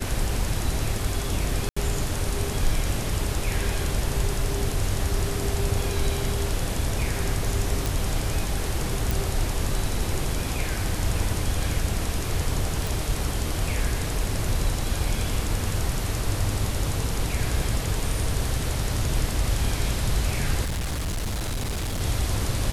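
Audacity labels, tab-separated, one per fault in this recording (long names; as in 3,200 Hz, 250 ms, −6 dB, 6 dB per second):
1.690000	1.760000	drop-out 75 ms
7.860000	7.860000	click
9.110000	9.110000	click
12.870000	12.870000	click
20.640000	22.020000	clipping −24.5 dBFS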